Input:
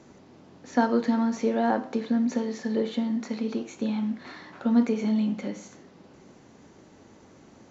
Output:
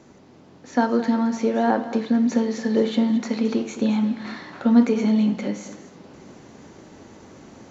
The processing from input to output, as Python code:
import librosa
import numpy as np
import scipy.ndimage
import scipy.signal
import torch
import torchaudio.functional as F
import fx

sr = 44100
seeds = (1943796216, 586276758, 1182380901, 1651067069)

p1 = fx.rider(x, sr, range_db=10, speed_s=2.0)
p2 = p1 + fx.echo_single(p1, sr, ms=218, db=-14.0, dry=0)
y = p2 * 10.0 ** (5.0 / 20.0)